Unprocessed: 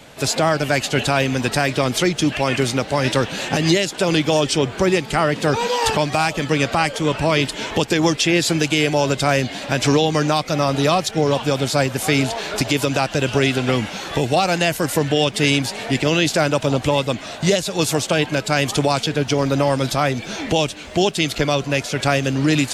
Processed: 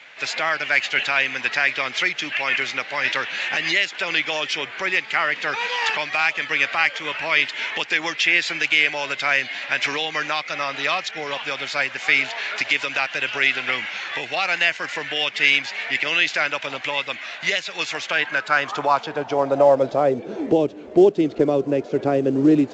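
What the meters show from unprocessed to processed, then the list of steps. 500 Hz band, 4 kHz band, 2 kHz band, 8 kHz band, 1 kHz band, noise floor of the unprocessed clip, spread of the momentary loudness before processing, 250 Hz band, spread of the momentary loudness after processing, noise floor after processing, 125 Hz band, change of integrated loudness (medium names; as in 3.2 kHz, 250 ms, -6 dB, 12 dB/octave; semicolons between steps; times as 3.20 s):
-4.0 dB, -2.0 dB, +4.0 dB, -12.0 dB, -4.0 dB, -34 dBFS, 4 LU, -6.0 dB, 8 LU, -38 dBFS, -16.0 dB, -2.0 dB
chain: band-pass sweep 2.1 kHz -> 380 Hz, 17.99–20.36 s; trim +7 dB; µ-law 128 kbps 16 kHz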